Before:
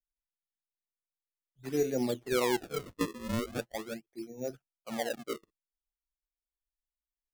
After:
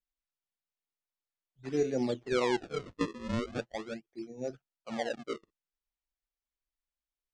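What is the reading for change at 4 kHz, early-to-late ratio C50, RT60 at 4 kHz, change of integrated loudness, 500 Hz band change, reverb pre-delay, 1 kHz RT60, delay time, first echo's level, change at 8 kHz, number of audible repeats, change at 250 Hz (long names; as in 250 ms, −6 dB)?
−1.5 dB, no reverb audible, no reverb audible, −0.5 dB, 0.0 dB, no reverb audible, no reverb audible, no echo audible, no echo audible, −7.0 dB, no echo audible, 0.0 dB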